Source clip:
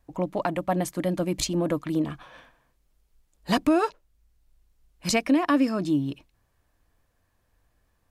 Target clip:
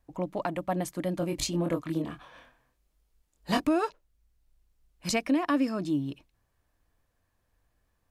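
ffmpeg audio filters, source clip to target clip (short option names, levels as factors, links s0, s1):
-filter_complex "[0:a]asettb=1/sr,asplit=3[s0][s1][s2];[s0]atrim=end=1.194[s3];[s1]atrim=start=1.19:end=3.64,asetpts=PTS-STARTPTS,afade=t=in:d=0.004:c=qsin,afade=t=out:st=2.446:d=0.004:c=qsin,asplit=2[s4][s5];[s5]adelay=24,volume=0.596[s6];[s4][s6]amix=inputs=2:normalize=0,atrim=end_sample=108045[s7];[s2]atrim=start=3.636[s8];[s3][s7]acrossfade=d=0.004:c1=hsin:c2=qsin[s9];[s9][s8]acrossfade=d=0.004:c1=qsin:c2=hsin,volume=0.596"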